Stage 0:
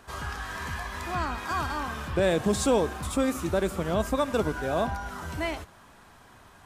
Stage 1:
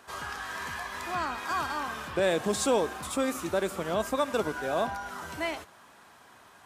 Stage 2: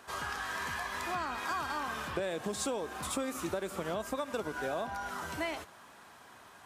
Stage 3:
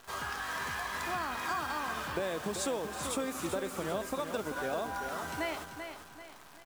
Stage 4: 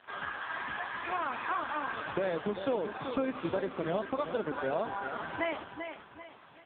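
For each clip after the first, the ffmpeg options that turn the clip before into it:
-af "highpass=f=360:p=1"
-af "acompressor=threshold=-31dB:ratio=12"
-af "acrusher=bits=9:dc=4:mix=0:aa=0.000001,aecho=1:1:388|776|1164|1552|1940:0.398|0.159|0.0637|0.0255|0.0102"
-af "volume=4dB" -ar 8000 -c:a libopencore_amrnb -b:a 5150

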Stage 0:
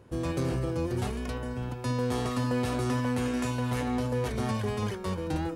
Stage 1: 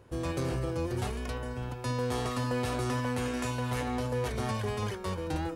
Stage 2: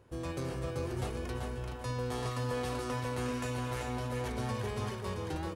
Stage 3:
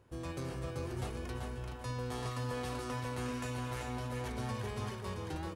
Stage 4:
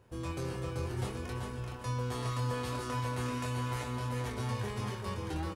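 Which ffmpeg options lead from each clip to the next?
-af "equalizer=f=210:w=1:g=-5.5"
-af "aecho=1:1:386|772|1158:0.596|0.149|0.0372,volume=-5dB"
-af "equalizer=f=480:t=o:w=0.77:g=-2.5,volume=-2.5dB"
-af "aecho=1:1:10|25:0.299|0.531,volume=1.5dB"

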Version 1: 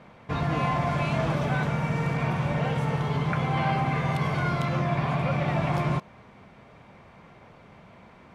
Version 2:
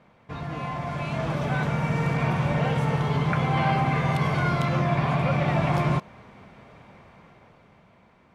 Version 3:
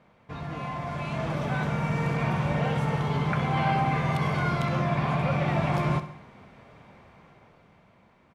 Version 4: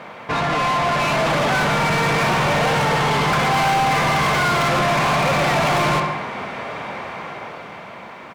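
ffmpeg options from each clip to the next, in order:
-af "dynaudnorm=f=210:g=13:m=10dB,volume=-7dB"
-af "aecho=1:1:65|130|195|260|325:0.224|0.119|0.0629|0.0333|0.0177,volume=-2.5dB"
-filter_complex "[0:a]asplit=2[a][b];[b]highpass=f=720:p=1,volume=32dB,asoftclip=type=tanh:threshold=-13.5dB[c];[a][c]amix=inputs=2:normalize=0,lowpass=f=2.8k:p=1,volume=-6dB,highshelf=f=6.1k:g=6,volume=2dB"

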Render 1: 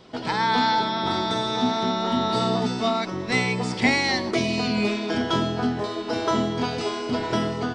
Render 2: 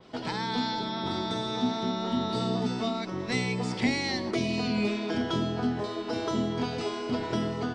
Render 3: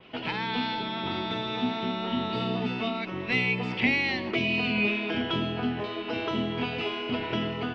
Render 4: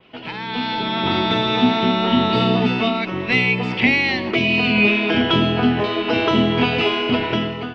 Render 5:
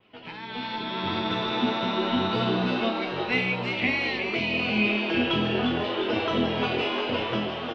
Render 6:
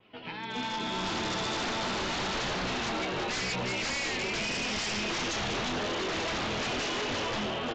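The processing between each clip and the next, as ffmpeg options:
-filter_complex "[0:a]acrossover=split=480|3000[a][b][c];[b]acompressor=threshold=-31dB:ratio=6[d];[a][d][c]amix=inputs=3:normalize=0,adynamicequalizer=threshold=0.00891:dfrequency=3700:dqfactor=0.7:tfrequency=3700:tqfactor=0.7:attack=5:release=100:ratio=0.375:range=2:mode=cutabove:tftype=highshelf,volume=-3.5dB"
-af "lowpass=f=2.7k:t=q:w=4.9,volume=-1dB"
-af "dynaudnorm=f=220:g=7:m=13dB"
-filter_complex "[0:a]flanger=delay=8.6:depth=6.5:regen=42:speed=0.82:shape=triangular,asplit=8[a][b][c][d][e][f][g][h];[b]adelay=352,afreqshift=130,volume=-6dB[i];[c]adelay=704,afreqshift=260,volume=-11.4dB[j];[d]adelay=1056,afreqshift=390,volume=-16.7dB[k];[e]adelay=1408,afreqshift=520,volume=-22.1dB[l];[f]adelay=1760,afreqshift=650,volume=-27.4dB[m];[g]adelay=2112,afreqshift=780,volume=-32.8dB[n];[h]adelay=2464,afreqshift=910,volume=-38.1dB[o];[a][i][j][k][l][m][n][o]amix=inputs=8:normalize=0,volume=-5.5dB"
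-af "aeval=exprs='0.0447*(abs(mod(val(0)/0.0447+3,4)-2)-1)':c=same,aresample=16000,aresample=44100"

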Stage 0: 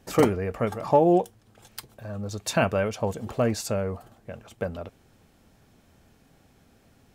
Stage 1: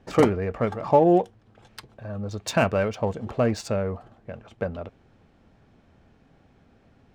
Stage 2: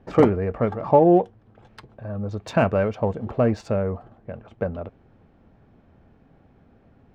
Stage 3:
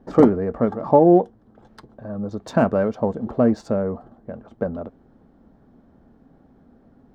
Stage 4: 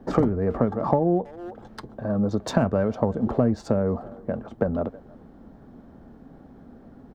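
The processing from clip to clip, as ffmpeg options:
-af "adynamicsmooth=sensitivity=4.5:basefreq=3.5k,volume=1.5dB"
-af "lowpass=f=1.3k:p=1,volume=3dB"
-af "equalizer=f=100:t=o:w=0.67:g=-8,equalizer=f=250:t=o:w=0.67:g=6,equalizer=f=2.5k:t=o:w=0.67:g=-12,volume=1dB"
-filter_complex "[0:a]asplit=2[a][b];[b]adelay=320,highpass=300,lowpass=3.4k,asoftclip=type=hard:threshold=-11dB,volume=-26dB[c];[a][c]amix=inputs=2:normalize=0,acrossover=split=120[d][e];[e]acompressor=threshold=-25dB:ratio=10[f];[d][f]amix=inputs=2:normalize=0,volume=6dB"

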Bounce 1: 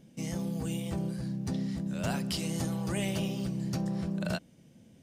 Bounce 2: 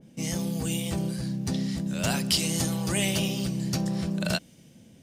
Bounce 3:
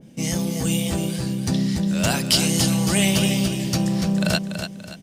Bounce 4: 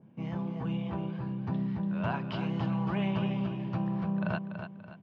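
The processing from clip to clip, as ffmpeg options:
-af "adynamicequalizer=threshold=0.00224:dfrequency=2100:dqfactor=0.7:tfrequency=2100:tqfactor=0.7:attack=5:release=100:ratio=0.375:range=4:mode=boostabove:tftype=highshelf,volume=4dB"
-af "aecho=1:1:288|576|864|1152:0.398|0.147|0.0545|0.0202,volume=6dB"
-af "highpass=110,equalizer=f=110:t=q:w=4:g=5,equalizer=f=280:t=q:w=4:g=-6,equalizer=f=520:t=q:w=4:g=-5,equalizer=f=1k:t=q:w=4:g=9,equalizer=f=2k:t=q:w=4:g=-8,lowpass=f=2.2k:w=0.5412,lowpass=f=2.2k:w=1.3066,volume=-9dB"

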